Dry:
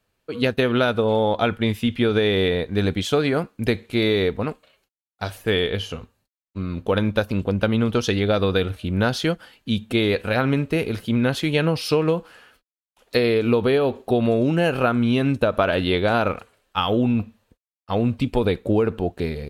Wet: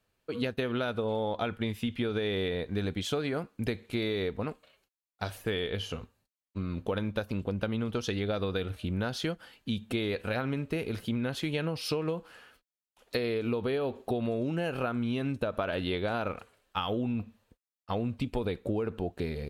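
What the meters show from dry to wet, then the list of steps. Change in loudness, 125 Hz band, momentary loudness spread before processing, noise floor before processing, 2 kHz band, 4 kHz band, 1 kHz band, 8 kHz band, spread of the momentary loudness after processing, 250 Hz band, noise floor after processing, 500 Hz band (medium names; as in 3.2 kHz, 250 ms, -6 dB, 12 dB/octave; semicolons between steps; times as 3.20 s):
-11.0 dB, -10.5 dB, 8 LU, under -85 dBFS, -11.5 dB, -10.5 dB, -11.0 dB, -8.5 dB, 6 LU, -10.5 dB, under -85 dBFS, -11.5 dB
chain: compression 3:1, threshold -25 dBFS, peak gain reduction 8.5 dB; trim -4.5 dB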